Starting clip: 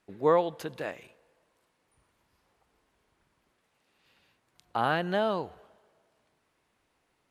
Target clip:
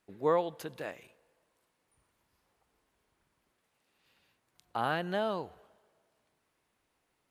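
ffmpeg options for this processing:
ffmpeg -i in.wav -af "highshelf=frequency=9000:gain=7,volume=-4.5dB" out.wav

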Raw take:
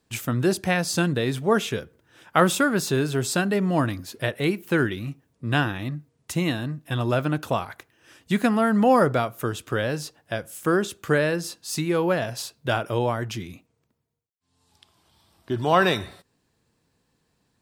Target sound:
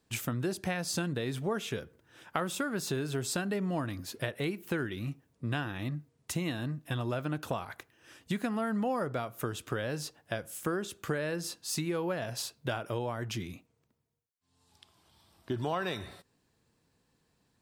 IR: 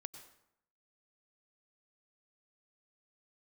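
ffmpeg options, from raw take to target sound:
-af "acompressor=threshold=-27dB:ratio=5,volume=-3dB"

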